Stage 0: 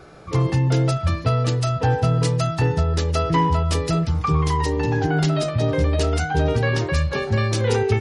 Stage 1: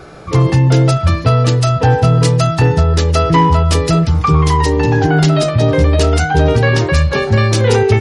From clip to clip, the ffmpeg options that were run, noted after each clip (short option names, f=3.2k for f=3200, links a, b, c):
-af "acontrast=68,volume=2.5dB"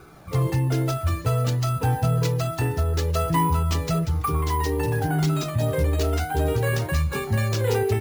-af "flanger=delay=0.8:depth=2.2:regen=-40:speed=0.56:shape=sinusoidal,acrusher=samples=4:mix=1:aa=0.000001,volume=-8dB"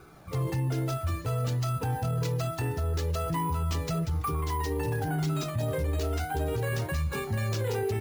-af "alimiter=limit=-18dB:level=0:latency=1:release=17,volume=-4.5dB"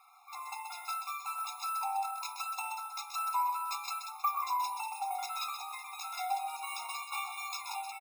-af "dynaudnorm=f=140:g=5:m=4.5dB,aecho=1:1:129:0.422,afftfilt=real='re*eq(mod(floor(b*sr/1024/700),2),1)':imag='im*eq(mod(floor(b*sr/1024/700),2),1)':win_size=1024:overlap=0.75,volume=-2.5dB"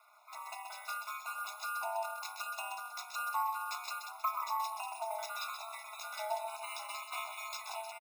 -af "aeval=exprs='val(0)*sin(2*PI*110*n/s)':c=same,aecho=1:1:625:0.0794"